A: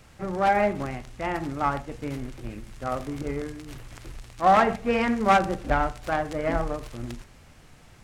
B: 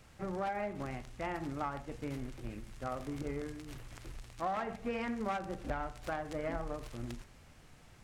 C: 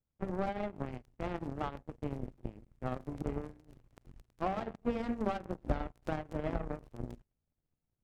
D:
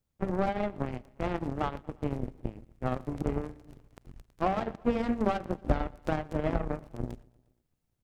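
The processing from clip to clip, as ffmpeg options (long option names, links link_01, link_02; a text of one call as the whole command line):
ffmpeg -i in.wav -af "acompressor=threshold=-27dB:ratio=6,volume=-6.5dB" out.wav
ffmpeg -i in.wav -af "aeval=exprs='0.0841*(cos(1*acos(clip(val(0)/0.0841,-1,1)))-cos(1*PI/2))+0.0119*(cos(7*acos(clip(val(0)/0.0841,-1,1)))-cos(7*PI/2))':channel_layout=same,tiltshelf=frequency=910:gain=9,volume=1dB" out.wav
ffmpeg -i in.wav -af "aecho=1:1:118|236|354|472:0.0631|0.0379|0.0227|0.0136,volume=6dB" out.wav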